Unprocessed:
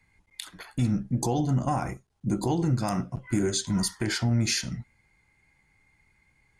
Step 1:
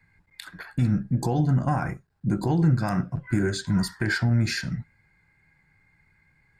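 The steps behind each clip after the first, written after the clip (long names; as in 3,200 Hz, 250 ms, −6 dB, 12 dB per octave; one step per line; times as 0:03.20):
thirty-one-band graphic EQ 100 Hz +6 dB, 160 Hz +9 dB, 1,600 Hz +11 dB, 3,150 Hz −7 dB, 6,300 Hz −10 dB, 10,000 Hz −11 dB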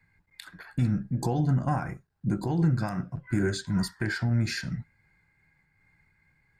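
amplitude modulation by smooth noise, depth 60%
level −1.5 dB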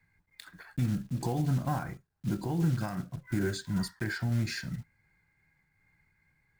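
one scale factor per block 5 bits
level −4 dB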